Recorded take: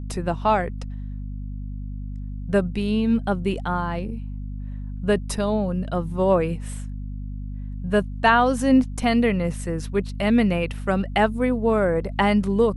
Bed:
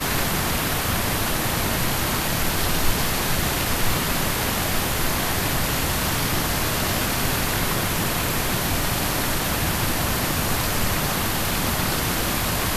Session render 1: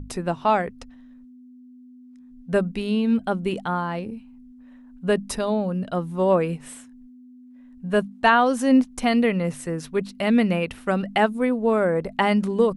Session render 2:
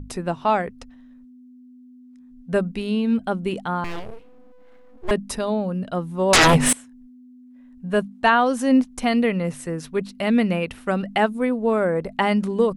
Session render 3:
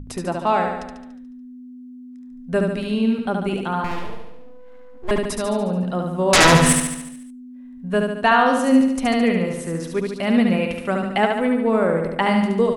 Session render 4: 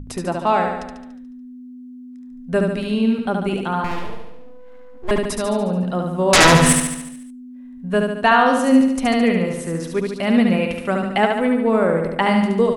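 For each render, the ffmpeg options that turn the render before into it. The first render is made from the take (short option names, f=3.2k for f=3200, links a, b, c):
-af "bandreject=f=50:t=h:w=6,bandreject=f=100:t=h:w=6,bandreject=f=150:t=h:w=6,bandreject=f=200:t=h:w=6"
-filter_complex "[0:a]asettb=1/sr,asplit=3[a][b][c];[a]atrim=end=3.844[d];[b]atrim=start=3.84:end=5.11,asetpts=PTS-STARTPTS,afade=t=in:d=0.004:c=qsin,afade=t=out:st=1.266:d=0.004:c=qsin,aeval=exprs='abs(val(0))':c=same[e];[c]atrim=start=5.106[f];[d][e]acrossfade=d=0.004:c1=hsin:c2=qsin[g];[g][f]acrossfade=d=0.004:c1=qsin:c2=hsin,asettb=1/sr,asplit=3[h][i][j];[h]atrim=end=6.334[k];[i]atrim=start=6.33:end=6.73,asetpts=PTS-STARTPTS,afade=t=in:d=0.004:c=qsin,afade=t=out:st=0.396:d=0.004:c=qsin,aeval=exprs='0.316*sin(PI/2*10*val(0)/0.316)':c=same[l];[j]atrim=start=6.726[m];[k][l]acrossfade=d=0.004:c1=hsin:c2=qsin[n];[n][m]acrossfade=d=0.004:c1=qsin:c2=hsin"
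-af "aecho=1:1:72|144|216|288|360|432|504|576:0.631|0.36|0.205|0.117|0.0666|0.038|0.0216|0.0123"
-af "volume=1.5dB,alimiter=limit=-3dB:level=0:latency=1"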